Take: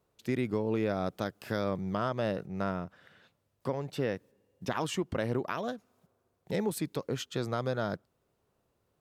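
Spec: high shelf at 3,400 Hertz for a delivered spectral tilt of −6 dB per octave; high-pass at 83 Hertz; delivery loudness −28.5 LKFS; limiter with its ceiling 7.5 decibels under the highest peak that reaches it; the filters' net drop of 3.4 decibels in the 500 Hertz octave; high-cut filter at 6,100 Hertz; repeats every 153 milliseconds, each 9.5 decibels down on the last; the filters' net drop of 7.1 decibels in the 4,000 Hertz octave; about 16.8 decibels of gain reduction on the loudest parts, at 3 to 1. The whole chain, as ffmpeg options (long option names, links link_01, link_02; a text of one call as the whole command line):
ffmpeg -i in.wav -af "highpass=83,lowpass=6100,equalizer=frequency=500:width_type=o:gain=-4,highshelf=frequency=3400:gain=-4.5,equalizer=frequency=4000:width_type=o:gain=-6,acompressor=threshold=-52dB:ratio=3,alimiter=level_in=17dB:limit=-24dB:level=0:latency=1,volume=-17dB,aecho=1:1:153|306|459|612:0.335|0.111|0.0365|0.012,volume=24.5dB" out.wav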